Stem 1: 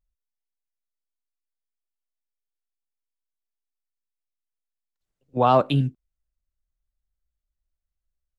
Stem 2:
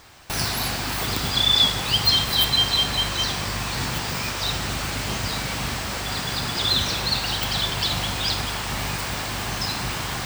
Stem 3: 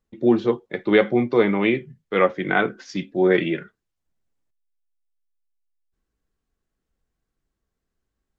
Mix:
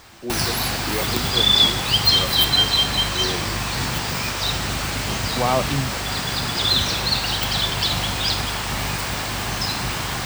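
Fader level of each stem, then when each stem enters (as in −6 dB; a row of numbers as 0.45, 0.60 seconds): −3.0, +2.5, −13.0 decibels; 0.00, 0.00, 0.00 seconds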